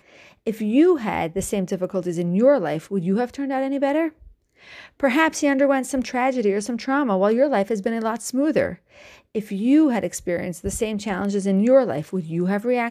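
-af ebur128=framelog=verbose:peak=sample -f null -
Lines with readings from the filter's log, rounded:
Integrated loudness:
  I:         -21.6 LUFS
  Threshold: -32.0 LUFS
Loudness range:
  LRA:         2.2 LU
  Threshold: -42.1 LUFS
  LRA low:   -23.1 LUFS
  LRA high:  -20.9 LUFS
Sample peak:
  Peak:       -5.6 dBFS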